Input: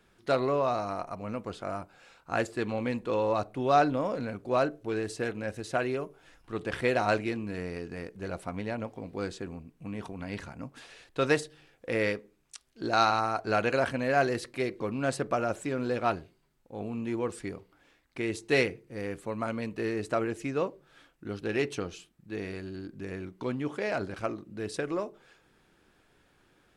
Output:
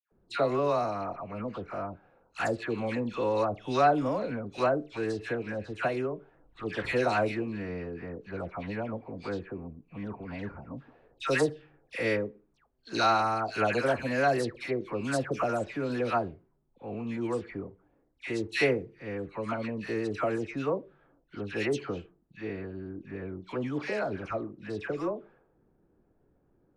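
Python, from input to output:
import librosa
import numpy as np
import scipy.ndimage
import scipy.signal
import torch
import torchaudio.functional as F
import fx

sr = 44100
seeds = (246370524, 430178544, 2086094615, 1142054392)

y = fx.env_lowpass(x, sr, base_hz=530.0, full_db=-26.0)
y = fx.dispersion(y, sr, late='lows', ms=117.0, hz=1500.0)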